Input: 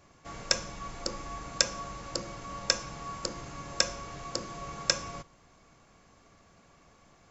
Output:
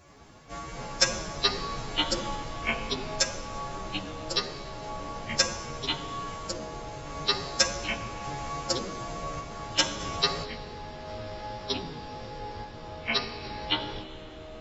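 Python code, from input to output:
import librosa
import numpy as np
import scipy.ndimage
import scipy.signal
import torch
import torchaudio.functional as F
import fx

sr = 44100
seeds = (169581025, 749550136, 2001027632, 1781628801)

y = fx.tremolo_random(x, sr, seeds[0], hz=3.4, depth_pct=55)
y = fx.stretch_vocoder(y, sr, factor=2.0)
y = fx.echo_pitch(y, sr, ms=85, semitones=-5, count=3, db_per_echo=-3.0)
y = y * librosa.db_to_amplitude(5.5)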